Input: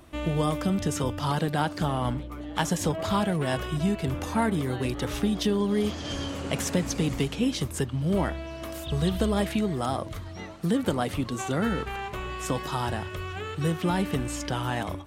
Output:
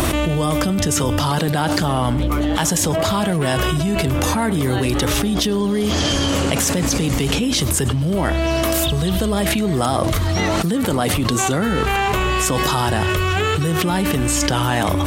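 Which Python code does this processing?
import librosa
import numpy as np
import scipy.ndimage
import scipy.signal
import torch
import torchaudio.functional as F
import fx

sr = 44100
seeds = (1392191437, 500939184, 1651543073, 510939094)

y = fx.high_shelf(x, sr, hz=4800.0, db=6.5)
y = y + 10.0 ** (-23.5 / 20.0) * np.pad(y, (int(100 * sr / 1000.0), 0))[:len(y)]
y = fx.env_flatten(y, sr, amount_pct=100)
y = F.gain(torch.from_numpy(y), 2.5).numpy()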